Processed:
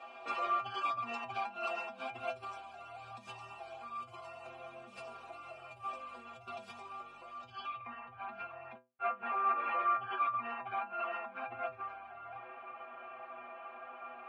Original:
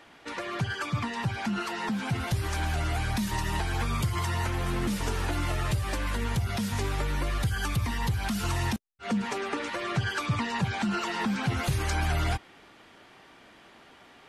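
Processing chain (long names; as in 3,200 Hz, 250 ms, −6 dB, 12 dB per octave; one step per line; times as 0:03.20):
high-shelf EQ 4,600 Hz −4.5 dB
compressor whose output falls as the input rises −37 dBFS, ratio −1
low-pass filter sweep 9,000 Hz → 1,800 Hz, 0:07.30–0:07.91
formant filter a
stiff-string resonator 120 Hz, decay 0.31 s, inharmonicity 0.008
level +18 dB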